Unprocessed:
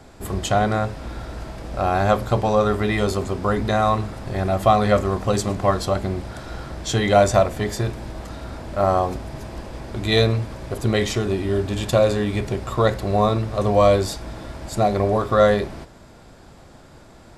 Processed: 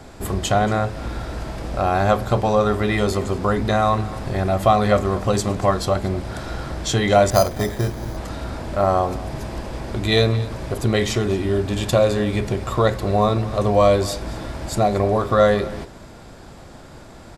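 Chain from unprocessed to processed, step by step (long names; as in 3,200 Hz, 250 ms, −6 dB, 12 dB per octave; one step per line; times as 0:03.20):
in parallel at −0.5 dB: downward compressor, threshold −29 dBFS, peak gain reduction 18 dB
on the sum: single-tap delay 231 ms −18.5 dB
0:07.30–0:08.17: bad sample-rate conversion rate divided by 8×, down filtered, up hold
level −1 dB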